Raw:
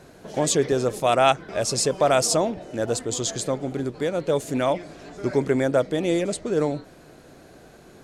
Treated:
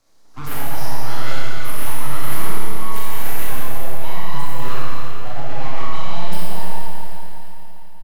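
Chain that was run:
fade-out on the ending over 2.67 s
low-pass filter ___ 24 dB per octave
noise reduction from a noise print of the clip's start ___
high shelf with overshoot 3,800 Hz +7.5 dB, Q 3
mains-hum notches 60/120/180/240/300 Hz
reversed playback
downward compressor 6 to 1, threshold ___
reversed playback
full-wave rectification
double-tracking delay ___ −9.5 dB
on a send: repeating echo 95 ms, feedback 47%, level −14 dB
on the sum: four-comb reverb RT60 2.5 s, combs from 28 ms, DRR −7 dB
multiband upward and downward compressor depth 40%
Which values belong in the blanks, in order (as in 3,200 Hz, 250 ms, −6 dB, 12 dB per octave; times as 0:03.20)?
7,900 Hz, 29 dB, −29 dBFS, 29 ms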